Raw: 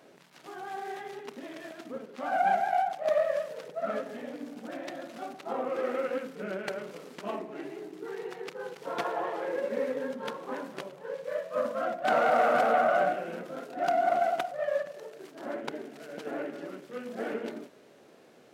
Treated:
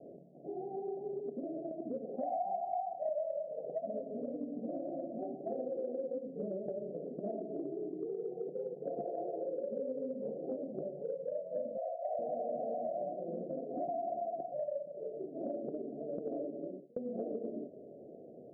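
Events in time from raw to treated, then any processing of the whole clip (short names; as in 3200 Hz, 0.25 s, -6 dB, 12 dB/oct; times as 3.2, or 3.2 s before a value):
2.04–3.78 small resonant body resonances 780/2600 Hz, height 17 dB, ringing for 20 ms
8.93–11.12 doubler 19 ms -6.5 dB
11.77–12.19 steep high-pass 520 Hz 48 dB/oct
16.43–16.96 fade out
whole clip: steep low-pass 700 Hz 96 dB/oct; compressor 6:1, threshold -42 dBFS; gain +6 dB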